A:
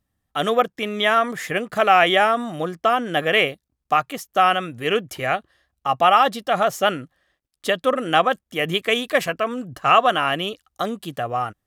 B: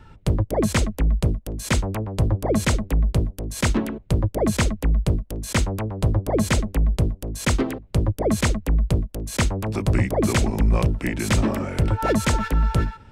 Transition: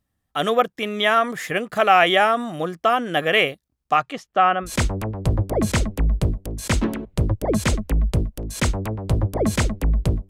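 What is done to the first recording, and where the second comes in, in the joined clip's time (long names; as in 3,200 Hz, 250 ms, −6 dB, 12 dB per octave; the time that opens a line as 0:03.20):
A
0:03.89–0:04.70: low-pass filter 11,000 Hz → 1,100 Hz
0:04.66: continue with B from 0:01.59, crossfade 0.08 s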